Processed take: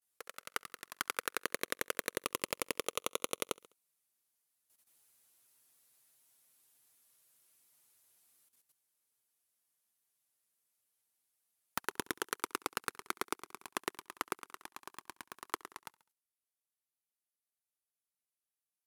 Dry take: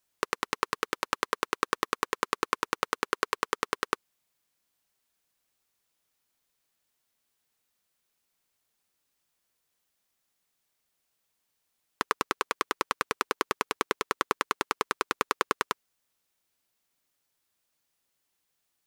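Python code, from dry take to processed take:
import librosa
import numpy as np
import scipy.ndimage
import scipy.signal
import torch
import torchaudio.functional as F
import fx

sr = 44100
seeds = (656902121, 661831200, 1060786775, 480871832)

y = fx.doppler_pass(x, sr, speed_mps=37, closest_m=29.0, pass_at_s=6.42)
y = fx.highpass(y, sr, hz=62.0, slope=6)
y = fx.peak_eq(y, sr, hz=11000.0, db=12.5, octaves=0.91)
y = fx.env_flanger(y, sr, rest_ms=9.1, full_db=-43.5)
y = fx.echo_feedback(y, sr, ms=68, feedback_pct=49, wet_db=-22.5)
y = fx.level_steps(y, sr, step_db=12)
y = F.gain(torch.from_numpy(y), 13.5).numpy()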